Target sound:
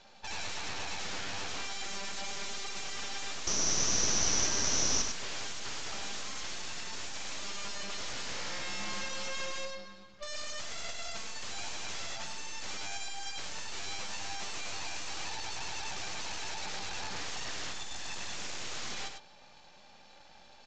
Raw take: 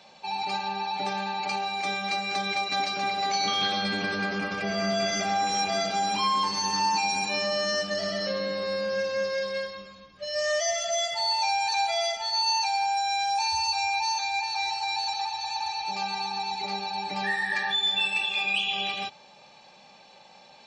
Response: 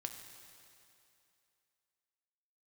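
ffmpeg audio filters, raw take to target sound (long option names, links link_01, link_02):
-filter_complex "[0:a]aeval=exprs='(mod(25.1*val(0)+1,2)-1)/25.1':channel_layout=same,asettb=1/sr,asplit=3[link_01][link_02][link_03];[link_01]atrim=end=3.474[link_04];[link_02]atrim=start=3.47:end=5.02,asetpts=PTS-STARTPTS,afade=type=in:duration=0.004:curve=qsin,afade=type=out:start_time=1.546:duration=0.004:curve=qsin,lowpass=frequency=5900:width_type=q:width=13[link_05];[link_03]atrim=start=5.016[link_06];[link_04][link_05]acrossfade=duration=0.004:curve1=hsin:curve2=qsin[link_07];[link_07][link_06]acrossfade=duration=0.004:curve1=qsin:curve2=hsin,aeval=exprs='max(val(0),0)':channel_layout=same,asplit=2[link_08][link_09];[link_09]aecho=0:1:102:0.447[link_10];[link_08][link_10]amix=inputs=2:normalize=0,volume=-1.5dB" -ar 16000 -c:a pcm_mulaw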